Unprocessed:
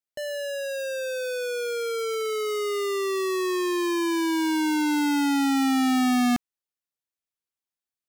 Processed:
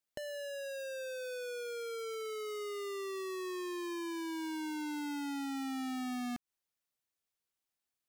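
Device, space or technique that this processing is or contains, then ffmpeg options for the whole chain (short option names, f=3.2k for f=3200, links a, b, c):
de-esser from a sidechain: -filter_complex "[0:a]asplit=2[a][b];[b]highpass=6.5k,apad=whole_len=356431[c];[a][c]sidechaincompress=threshold=-56dB:ratio=4:attack=4.5:release=82,volume=2dB"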